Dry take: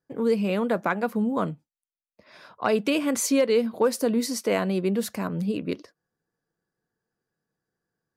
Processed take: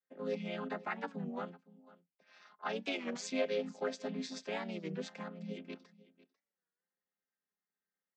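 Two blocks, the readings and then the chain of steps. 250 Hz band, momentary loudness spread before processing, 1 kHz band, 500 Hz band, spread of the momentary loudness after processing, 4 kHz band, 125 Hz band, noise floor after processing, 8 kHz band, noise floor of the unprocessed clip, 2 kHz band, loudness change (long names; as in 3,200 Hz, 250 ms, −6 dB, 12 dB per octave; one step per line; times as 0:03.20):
−16.5 dB, 8 LU, −12.5 dB, −14.5 dB, 9 LU, −10.5 dB, −14.5 dB, below −85 dBFS, −19.0 dB, below −85 dBFS, −10.5 dB, −14.5 dB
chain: channel vocoder with a chord as carrier minor triad, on F3
resonant band-pass 3,400 Hz, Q 0.79
single-tap delay 497 ms −20 dB
wow of a warped record 33 1/3 rpm, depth 160 cents
level +4 dB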